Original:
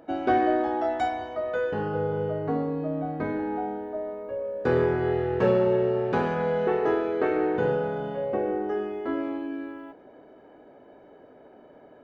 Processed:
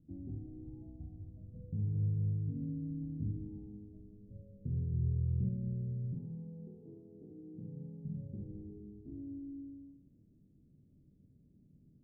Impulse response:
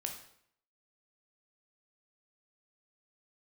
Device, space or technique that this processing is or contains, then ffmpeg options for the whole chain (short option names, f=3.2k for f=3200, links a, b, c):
club heard from the street: -filter_complex "[0:a]asettb=1/sr,asplit=3[a][b][c];[a]atrim=end=6.144[d];[b]atrim=start=6.14:end=8.05,asetpts=PTS-STARTPTS,afade=t=in:d=0.004:c=qsin,afade=t=out:st=1.906:d=0.004:c=qsin,highpass=250[e];[c]atrim=start=8.046[f];[d][e]acrossfade=d=0.004:c1=hsin:c2=qsin[g];[g][f]acrossfade=d=0.004:c1=qsin:c2=hsin,alimiter=limit=-18.5dB:level=0:latency=1:release=196,lowpass=f=160:w=0.5412,lowpass=f=160:w=1.3066[h];[1:a]atrim=start_sample=2205[i];[h][i]afir=irnorm=-1:irlink=0,volume=5dB"